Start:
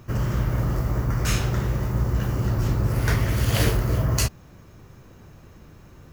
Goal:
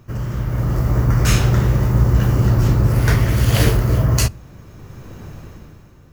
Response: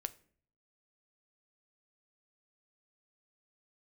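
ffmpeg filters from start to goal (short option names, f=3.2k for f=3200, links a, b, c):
-filter_complex "[0:a]dynaudnorm=f=110:g=13:m=14.5dB,asplit=2[a][b];[1:a]atrim=start_sample=2205,lowshelf=f=470:g=8[c];[b][c]afir=irnorm=-1:irlink=0,volume=-8.5dB[d];[a][d]amix=inputs=2:normalize=0,volume=-5dB"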